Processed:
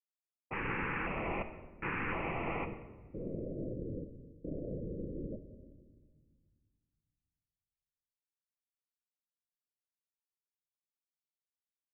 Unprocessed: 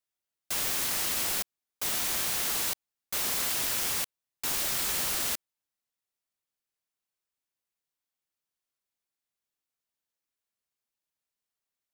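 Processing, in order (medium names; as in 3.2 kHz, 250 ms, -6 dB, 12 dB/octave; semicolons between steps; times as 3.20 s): self-modulated delay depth 0.6 ms; level-controlled noise filter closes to 520 Hz, open at -29 dBFS; gate with hold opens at -35 dBFS; LFO notch square 0.94 Hz 660–1600 Hz; steep low-pass 2.6 kHz 96 dB/octave, from 2.64 s 590 Hz; simulated room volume 1500 m³, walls mixed, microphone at 0.7 m; tape noise reduction on one side only decoder only; trim +4 dB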